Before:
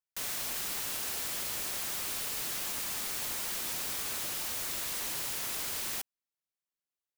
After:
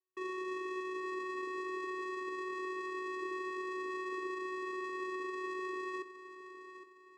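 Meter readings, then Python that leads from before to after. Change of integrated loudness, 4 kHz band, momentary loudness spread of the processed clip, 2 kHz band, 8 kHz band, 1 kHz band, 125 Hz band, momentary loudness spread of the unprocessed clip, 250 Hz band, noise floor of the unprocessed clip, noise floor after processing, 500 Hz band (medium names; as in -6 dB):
-7.0 dB, -18.0 dB, 10 LU, 0.0 dB, -27.5 dB, +5.5 dB, under -20 dB, 0 LU, +9.5 dB, under -85 dBFS, -59 dBFS, +10.5 dB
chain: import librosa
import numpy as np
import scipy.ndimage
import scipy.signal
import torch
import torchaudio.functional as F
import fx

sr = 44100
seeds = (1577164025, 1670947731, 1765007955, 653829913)

p1 = scipy.signal.sosfilt(scipy.signal.butter(16, 2500.0, 'lowpass', fs=sr, output='sos'), x)
p2 = fx.vocoder(p1, sr, bands=4, carrier='square', carrier_hz=371.0)
p3 = p2 + fx.echo_feedback(p2, sr, ms=813, feedback_pct=39, wet_db=-11.5, dry=0)
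y = F.gain(torch.from_numpy(p3), 7.0).numpy()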